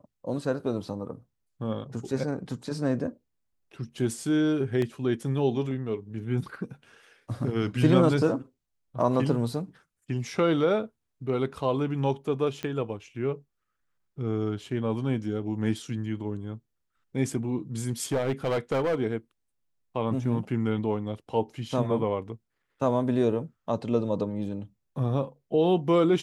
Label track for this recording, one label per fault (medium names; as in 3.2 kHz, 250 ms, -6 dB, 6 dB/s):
4.820000	4.820000	dropout 2.5 ms
12.630000	12.630000	pop -19 dBFS
18.020000	19.010000	clipped -22 dBFS